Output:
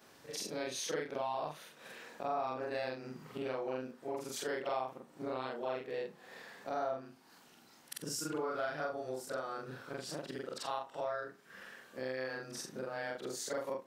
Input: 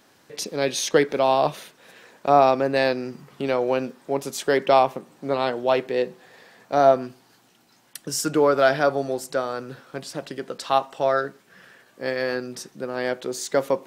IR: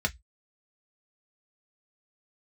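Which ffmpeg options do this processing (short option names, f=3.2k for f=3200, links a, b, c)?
-af "afftfilt=real='re':imag='-im':win_size=4096:overlap=0.75,adynamicequalizer=threshold=0.0126:dfrequency=1300:dqfactor=1.1:tfrequency=1300:tqfactor=1.1:attack=5:release=100:ratio=0.375:range=2:mode=boostabove:tftype=bell,acompressor=threshold=-42dB:ratio=3,volume=1.5dB"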